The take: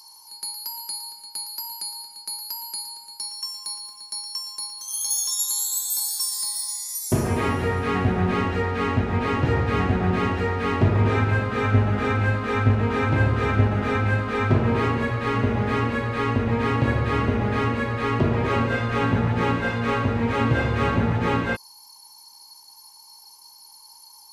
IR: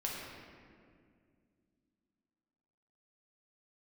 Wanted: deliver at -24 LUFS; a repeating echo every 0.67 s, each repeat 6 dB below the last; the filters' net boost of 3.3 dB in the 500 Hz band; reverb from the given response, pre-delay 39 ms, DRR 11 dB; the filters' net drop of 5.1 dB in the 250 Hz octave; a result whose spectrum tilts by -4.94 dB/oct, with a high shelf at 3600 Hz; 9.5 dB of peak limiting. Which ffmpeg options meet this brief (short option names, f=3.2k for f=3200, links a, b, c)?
-filter_complex "[0:a]equalizer=f=250:t=o:g=-8,equalizer=f=500:t=o:g=6.5,highshelf=f=3.6k:g=-6.5,alimiter=limit=-17dB:level=0:latency=1,aecho=1:1:670|1340|2010|2680|3350|4020:0.501|0.251|0.125|0.0626|0.0313|0.0157,asplit=2[a][b];[1:a]atrim=start_sample=2205,adelay=39[c];[b][c]afir=irnorm=-1:irlink=0,volume=-14dB[d];[a][d]amix=inputs=2:normalize=0,volume=1.5dB"